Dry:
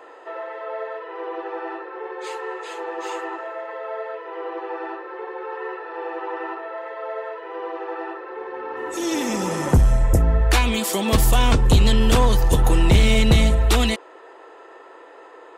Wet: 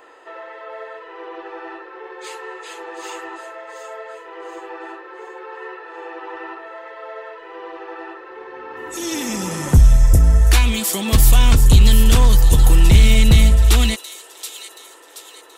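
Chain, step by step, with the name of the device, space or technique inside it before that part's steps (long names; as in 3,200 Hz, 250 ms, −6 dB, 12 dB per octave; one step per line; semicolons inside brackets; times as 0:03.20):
0:04.86–0:06.23: high-pass filter 91 Hz → 230 Hz 24 dB per octave
smiley-face EQ (low-shelf EQ 120 Hz +5 dB; parametric band 580 Hz −7 dB 2.4 octaves; high-shelf EQ 8,400 Hz +6.5 dB)
delay with a high-pass on its return 727 ms, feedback 44%, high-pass 4,300 Hz, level −7 dB
level +2 dB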